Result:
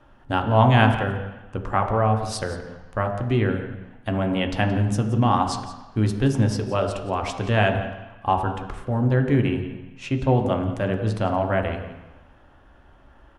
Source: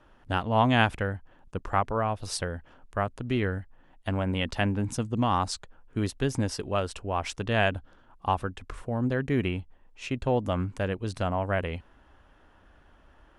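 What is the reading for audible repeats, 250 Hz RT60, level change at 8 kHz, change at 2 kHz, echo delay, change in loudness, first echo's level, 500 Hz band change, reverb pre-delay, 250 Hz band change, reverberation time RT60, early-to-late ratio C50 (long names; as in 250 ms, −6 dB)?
1, 1.0 s, +0.5 dB, +3.5 dB, 173 ms, +6.0 dB, −14.5 dB, +5.5 dB, 3 ms, +6.5 dB, 1.0 s, 7.5 dB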